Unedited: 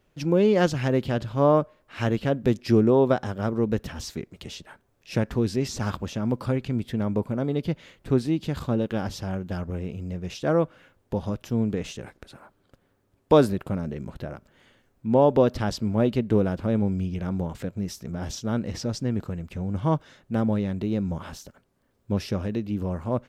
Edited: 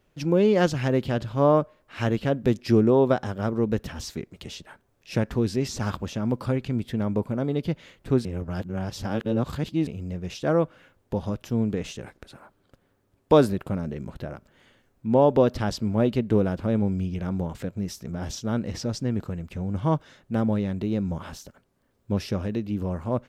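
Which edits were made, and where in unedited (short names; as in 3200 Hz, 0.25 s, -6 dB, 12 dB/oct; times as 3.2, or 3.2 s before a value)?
8.25–9.87 reverse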